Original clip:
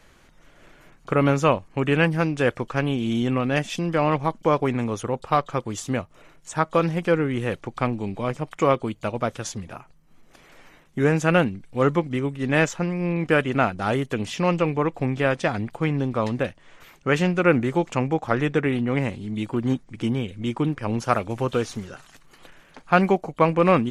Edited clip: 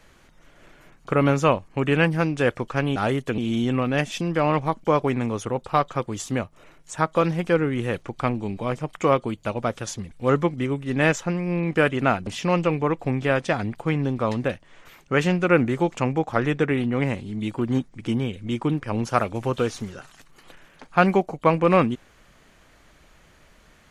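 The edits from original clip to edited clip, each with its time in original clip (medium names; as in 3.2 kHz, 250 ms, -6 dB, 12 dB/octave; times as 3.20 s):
9.69–11.64 s: delete
13.80–14.22 s: move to 2.96 s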